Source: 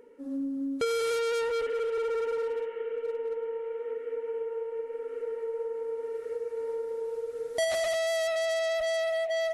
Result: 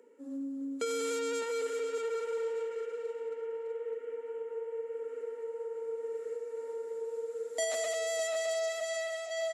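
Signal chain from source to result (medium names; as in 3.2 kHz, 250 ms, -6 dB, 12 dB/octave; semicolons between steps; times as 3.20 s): steep high-pass 200 Hz 72 dB/octave; peaking EQ 7.3 kHz +14.5 dB 0.23 oct; feedback delay 608 ms, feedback 23%, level -8 dB; trim -5.5 dB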